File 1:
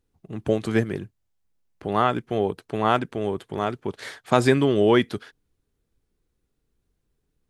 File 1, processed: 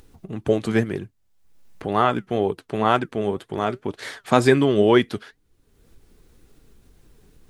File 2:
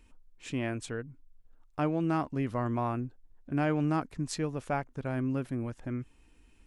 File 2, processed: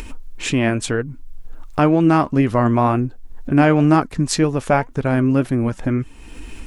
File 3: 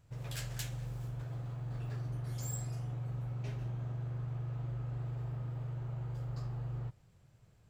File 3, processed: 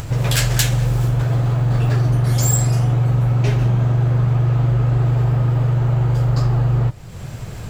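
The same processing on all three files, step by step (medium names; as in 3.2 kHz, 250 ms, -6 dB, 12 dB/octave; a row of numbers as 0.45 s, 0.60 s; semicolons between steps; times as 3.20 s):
in parallel at -2 dB: upward compressor, threshold -27 dBFS; on the sum: flange 2 Hz, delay 2.2 ms, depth 3.2 ms, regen +77%; peak normalisation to -1.5 dBFS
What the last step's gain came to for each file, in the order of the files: +1.0 dB, +14.5 dB, +20.5 dB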